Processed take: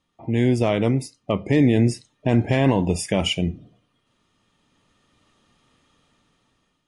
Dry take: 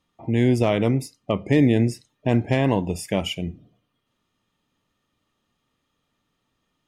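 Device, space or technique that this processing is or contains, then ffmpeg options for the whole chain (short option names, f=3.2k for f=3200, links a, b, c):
low-bitrate web radio: -af "dynaudnorm=f=660:g=5:m=14.5dB,alimiter=limit=-7.5dB:level=0:latency=1:release=13" -ar 24000 -c:a libmp3lame -b:a 48k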